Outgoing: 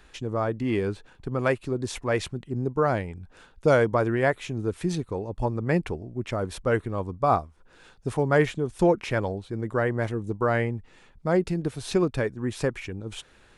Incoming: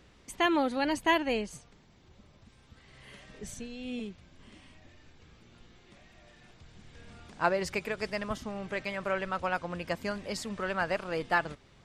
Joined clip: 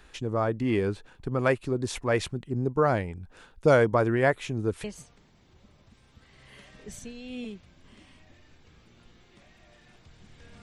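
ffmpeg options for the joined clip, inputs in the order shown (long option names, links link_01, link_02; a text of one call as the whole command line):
ffmpeg -i cue0.wav -i cue1.wav -filter_complex "[0:a]apad=whole_dur=10.62,atrim=end=10.62,atrim=end=4.842[link_01];[1:a]atrim=start=1.388:end=7.17[link_02];[link_01][link_02]acrossfade=duration=0.004:curve1=hsin:curve2=hsin" out.wav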